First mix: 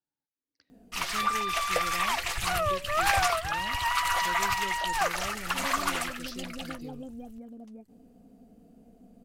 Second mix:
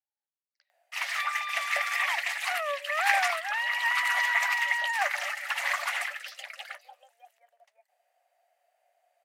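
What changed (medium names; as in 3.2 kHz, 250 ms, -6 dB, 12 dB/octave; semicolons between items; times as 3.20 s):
background: add peaking EQ 1.9 kHz +8 dB 0.45 oct; master: add rippled Chebyshev high-pass 560 Hz, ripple 6 dB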